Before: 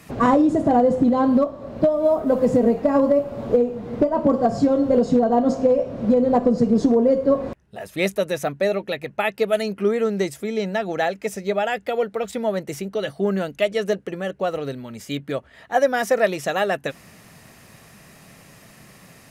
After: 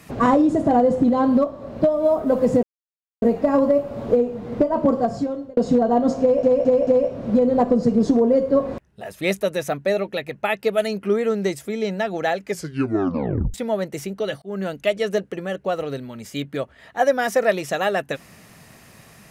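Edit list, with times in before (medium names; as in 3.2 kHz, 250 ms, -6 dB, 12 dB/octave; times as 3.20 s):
2.63 s: insert silence 0.59 s
4.32–4.98 s: fade out linear
5.62 s: stutter 0.22 s, 4 plays
11.19 s: tape stop 1.10 s
13.17–13.57 s: fade in equal-power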